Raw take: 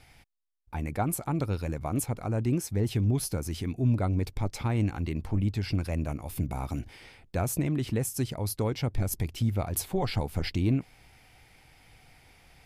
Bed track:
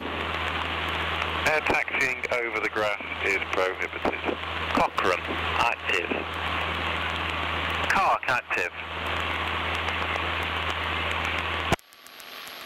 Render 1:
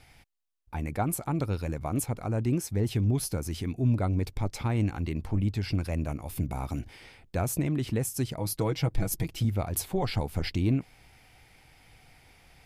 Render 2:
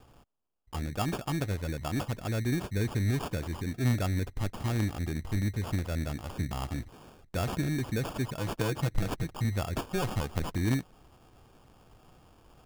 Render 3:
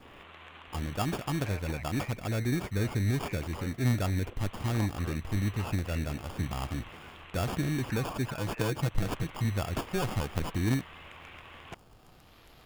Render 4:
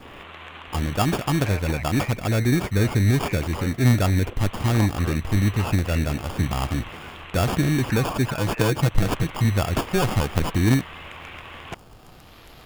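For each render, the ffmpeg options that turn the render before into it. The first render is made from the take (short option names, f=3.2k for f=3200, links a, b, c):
-filter_complex "[0:a]asettb=1/sr,asplit=3[a][b][c];[a]atrim=end=8.384[d];[b]atrim=start=8.38:end=9.45,asetpts=PTS-STARTPTS,afade=t=in:d=0.004:c=qsin,afade=t=out:st=1.066:d=0.004:c=qsin,aecho=1:1:6.2:0.65,atrim=end_sample=47187[e];[c]atrim=start=9.446[f];[d][e]acrossfade=d=0.004:c1=hsin:c2=qsin[g];[g][f]acrossfade=d=0.004:c1=qsin:c2=hsin"
-af "acrusher=samples=22:mix=1:aa=0.000001,aeval=exprs='0.178*(cos(1*acos(clip(val(0)/0.178,-1,1)))-cos(1*PI/2))+0.0355*(cos(3*acos(clip(val(0)/0.178,-1,1)))-cos(3*PI/2))+0.0178*(cos(5*acos(clip(val(0)/0.178,-1,1)))-cos(5*PI/2))':c=same"
-filter_complex "[1:a]volume=-21.5dB[a];[0:a][a]amix=inputs=2:normalize=0"
-af "volume=9.5dB"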